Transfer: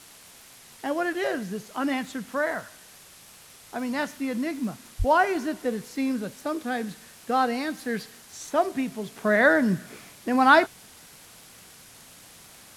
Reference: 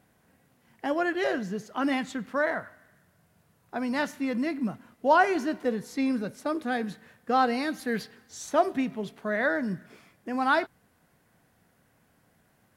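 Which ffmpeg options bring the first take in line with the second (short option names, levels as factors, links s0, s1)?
-filter_complex "[0:a]adeclick=t=4,asplit=3[s0][s1][s2];[s0]afade=t=out:st=4.98:d=0.02[s3];[s1]highpass=f=140:w=0.5412,highpass=f=140:w=1.3066,afade=t=in:st=4.98:d=0.02,afade=t=out:st=5.1:d=0.02[s4];[s2]afade=t=in:st=5.1:d=0.02[s5];[s3][s4][s5]amix=inputs=3:normalize=0,afwtdn=0.004,asetnsamples=n=441:p=0,asendcmd='9.16 volume volume -7.5dB',volume=1"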